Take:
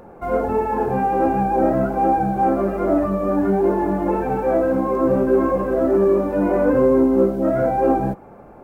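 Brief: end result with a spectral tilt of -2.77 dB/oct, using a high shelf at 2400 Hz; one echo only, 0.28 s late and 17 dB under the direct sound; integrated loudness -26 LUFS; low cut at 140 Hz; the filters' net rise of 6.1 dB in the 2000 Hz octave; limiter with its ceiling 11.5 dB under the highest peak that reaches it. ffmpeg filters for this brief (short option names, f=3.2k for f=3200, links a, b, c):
-af "highpass=140,equalizer=f=2k:t=o:g=5.5,highshelf=f=2.4k:g=7,alimiter=limit=-18dB:level=0:latency=1,aecho=1:1:280:0.141,volume=-1dB"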